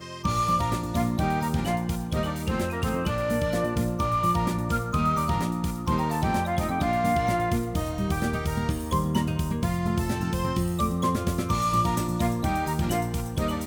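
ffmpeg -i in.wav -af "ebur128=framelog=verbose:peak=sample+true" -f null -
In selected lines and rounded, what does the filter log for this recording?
Integrated loudness:
  I:         -26.3 LUFS
  Threshold: -36.3 LUFS
Loudness range:
  LRA:         1.3 LU
  Threshold: -46.3 LUFS
  LRA low:   -27.0 LUFS
  LRA high:  -25.7 LUFS
Sample peak:
  Peak:      -12.2 dBFS
True peak:
  Peak:      -12.1 dBFS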